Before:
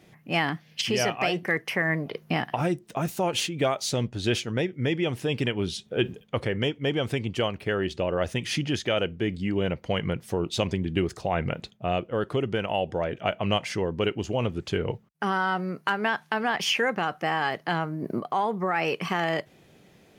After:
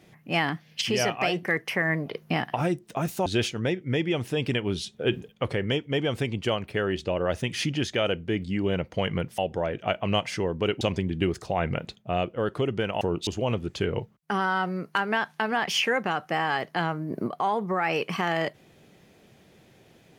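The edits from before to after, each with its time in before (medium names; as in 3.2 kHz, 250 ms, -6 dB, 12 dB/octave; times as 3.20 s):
3.26–4.18 s: delete
10.30–10.56 s: swap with 12.76–14.19 s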